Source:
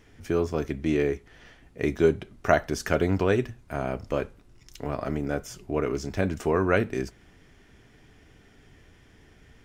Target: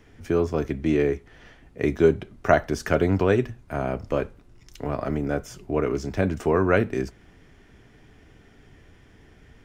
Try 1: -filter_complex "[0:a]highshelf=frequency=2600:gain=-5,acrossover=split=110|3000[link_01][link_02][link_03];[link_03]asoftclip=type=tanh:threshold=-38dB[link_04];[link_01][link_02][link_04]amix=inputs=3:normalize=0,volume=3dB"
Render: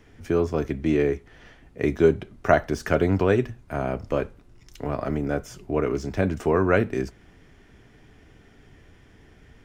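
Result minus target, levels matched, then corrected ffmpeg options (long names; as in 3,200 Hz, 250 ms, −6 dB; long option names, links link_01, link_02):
soft clipping: distortion +15 dB
-filter_complex "[0:a]highshelf=frequency=2600:gain=-5,acrossover=split=110|3000[link_01][link_02][link_03];[link_03]asoftclip=type=tanh:threshold=-27.5dB[link_04];[link_01][link_02][link_04]amix=inputs=3:normalize=0,volume=3dB"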